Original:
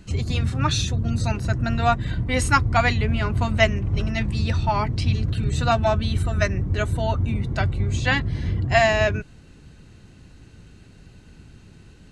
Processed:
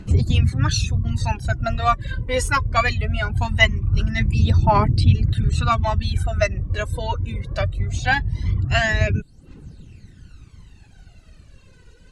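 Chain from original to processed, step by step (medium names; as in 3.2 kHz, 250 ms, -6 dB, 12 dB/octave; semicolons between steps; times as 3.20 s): reverb removal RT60 0.63 s; phaser 0.21 Hz, delay 2.1 ms, feedback 70%; trim -1.5 dB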